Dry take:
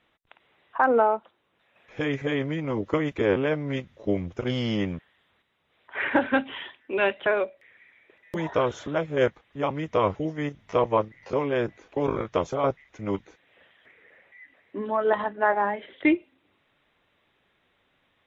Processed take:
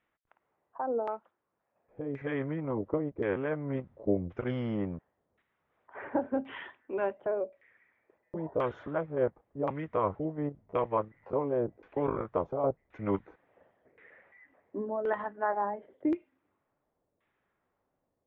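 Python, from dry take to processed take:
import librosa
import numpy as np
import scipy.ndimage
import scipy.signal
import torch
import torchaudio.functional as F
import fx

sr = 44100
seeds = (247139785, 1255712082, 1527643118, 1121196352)

y = fx.rider(x, sr, range_db=5, speed_s=0.5)
y = fx.filter_lfo_lowpass(y, sr, shape='saw_down', hz=0.93, low_hz=510.0, high_hz=2100.0, q=1.2)
y = F.gain(torch.from_numpy(y), -7.0).numpy()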